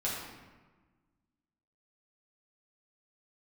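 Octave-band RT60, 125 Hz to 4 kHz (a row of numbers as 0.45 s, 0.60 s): 1.8 s, 1.8 s, 1.3 s, 1.3 s, 1.2 s, 0.85 s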